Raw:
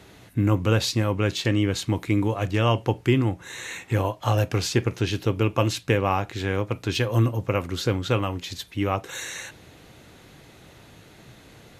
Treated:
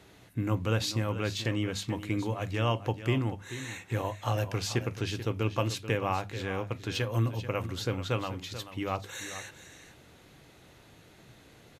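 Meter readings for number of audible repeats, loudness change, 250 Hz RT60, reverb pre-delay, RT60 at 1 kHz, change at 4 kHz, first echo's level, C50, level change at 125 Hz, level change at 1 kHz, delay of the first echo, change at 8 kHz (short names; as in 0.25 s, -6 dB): 1, -7.5 dB, none, none, none, -6.5 dB, -12.5 dB, none, -7.5 dB, -6.5 dB, 0.436 s, -6.5 dB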